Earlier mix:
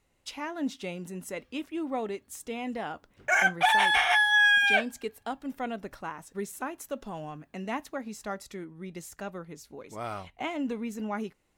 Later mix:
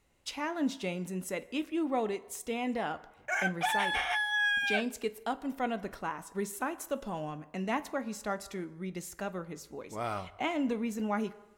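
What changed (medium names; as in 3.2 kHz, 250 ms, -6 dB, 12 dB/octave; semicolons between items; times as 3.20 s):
background -8.5 dB; reverb: on, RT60 1.1 s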